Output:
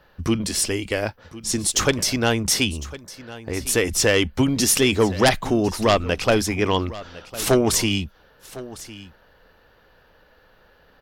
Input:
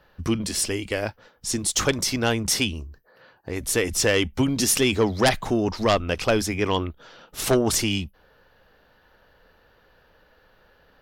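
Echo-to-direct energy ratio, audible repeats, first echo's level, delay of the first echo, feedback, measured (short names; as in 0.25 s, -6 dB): -17.5 dB, 1, -17.5 dB, 1.055 s, no steady repeat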